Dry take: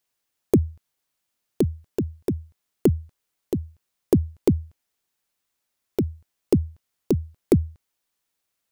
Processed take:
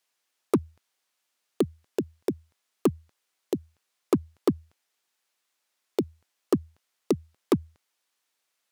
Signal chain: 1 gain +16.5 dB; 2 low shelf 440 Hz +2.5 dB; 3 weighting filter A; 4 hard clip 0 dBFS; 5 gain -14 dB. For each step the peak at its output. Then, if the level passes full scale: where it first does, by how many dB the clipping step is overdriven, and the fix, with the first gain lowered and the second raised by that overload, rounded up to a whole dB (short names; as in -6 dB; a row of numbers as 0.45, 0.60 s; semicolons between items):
+11.0, +12.5, +7.5, 0.0, -14.0 dBFS; step 1, 7.5 dB; step 1 +8.5 dB, step 5 -6 dB